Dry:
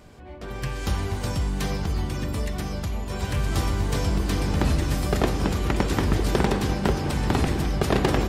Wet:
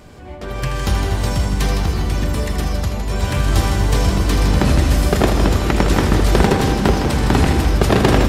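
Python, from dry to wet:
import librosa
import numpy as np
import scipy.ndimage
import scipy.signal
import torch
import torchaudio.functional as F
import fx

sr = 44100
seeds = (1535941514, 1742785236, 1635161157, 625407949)

y = fx.echo_heads(x, sr, ms=80, heads='first and second', feedback_pct=43, wet_db=-9.5)
y = y * librosa.db_to_amplitude(7.0)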